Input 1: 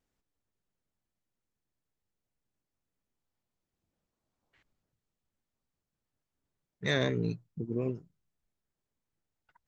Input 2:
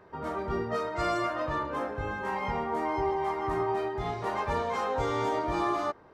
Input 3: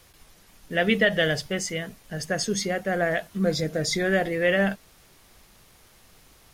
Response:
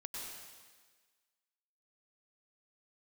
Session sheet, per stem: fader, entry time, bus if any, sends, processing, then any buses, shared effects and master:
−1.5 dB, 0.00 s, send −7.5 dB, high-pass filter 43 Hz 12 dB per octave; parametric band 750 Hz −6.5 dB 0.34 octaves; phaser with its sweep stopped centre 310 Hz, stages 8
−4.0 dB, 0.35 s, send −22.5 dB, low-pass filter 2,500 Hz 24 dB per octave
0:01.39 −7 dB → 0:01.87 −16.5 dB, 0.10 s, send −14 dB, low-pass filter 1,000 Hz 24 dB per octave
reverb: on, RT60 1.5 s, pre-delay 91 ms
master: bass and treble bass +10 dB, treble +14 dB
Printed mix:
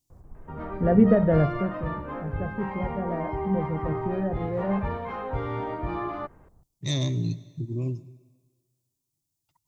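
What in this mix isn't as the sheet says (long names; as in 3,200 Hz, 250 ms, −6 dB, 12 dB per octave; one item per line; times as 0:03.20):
stem 2: send off
stem 3 −7.0 dB → +1.0 dB
reverb return −6.5 dB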